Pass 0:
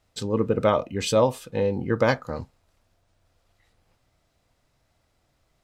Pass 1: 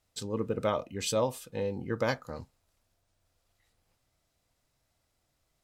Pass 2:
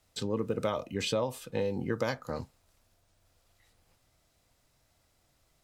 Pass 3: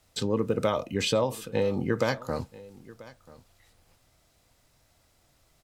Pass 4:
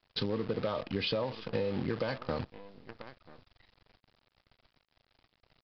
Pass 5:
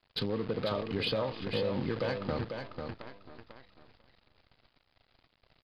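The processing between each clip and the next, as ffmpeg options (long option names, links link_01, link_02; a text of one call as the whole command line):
ffmpeg -i in.wav -af "aemphasis=mode=production:type=cd,volume=-8.5dB" out.wav
ffmpeg -i in.wav -filter_complex "[0:a]acrossover=split=100|4000[link_01][link_02][link_03];[link_01]acompressor=threshold=-57dB:ratio=4[link_04];[link_02]acompressor=threshold=-34dB:ratio=4[link_05];[link_03]acompressor=threshold=-53dB:ratio=4[link_06];[link_04][link_05][link_06]amix=inputs=3:normalize=0,volume=6dB" out.wav
ffmpeg -i in.wav -af "aecho=1:1:987:0.0944,volume=5dB" out.wav
ffmpeg -i in.wav -af "acrusher=bits=7:dc=4:mix=0:aa=0.000001,aresample=11025,asoftclip=type=hard:threshold=-18dB,aresample=44100,acompressor=threshold=-29dB:ratio=6" out.wav
ffmpeg -i in.wav -filter_complex "[0:a]aresample=11025,aresample=44100,asoftclip=type=tanh:threshold=-22.5dB,asplit=2[link_01][link_02];[link_02]aecho=0:1:495|990|1485:0.501|0.0802|0.0128[link_03];[link_01][link_03]amix=inputs=2:normalize=0,volume=1dB" out.wav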